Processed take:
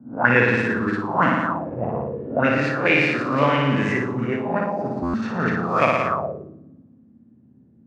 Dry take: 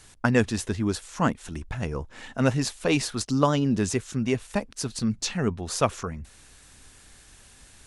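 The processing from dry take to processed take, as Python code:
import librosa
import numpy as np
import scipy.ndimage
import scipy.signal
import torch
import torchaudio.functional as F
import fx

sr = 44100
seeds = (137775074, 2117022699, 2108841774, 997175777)

p1 = fx.spec_swells(x, sr, rise_s=0.5)
p2 = scipy.signal.sosfilt(scipy.signal.butter(4, 110.0, 'highpass', fs=sr, output='sos'), p1)
p3 = fx.hum_notches(p2, sr, base_hz=50, count=9)
p4 = p3 + fx.room_flutter(p3, sr, wall_m=9.9, rt60_s=1.5, dry=0)
p5 = fx.buffer_glitch(p4, sr, at_s=(5.02,), block=512, repeats=9)
p6 = fx.envelope_lowpass(p5, sr, base_hz=220.0, top_hz=2200.0, q=4.0, full_db=-17.0, direction='up')
y = p6 * 10.0 ** (-1.0 / 20.0)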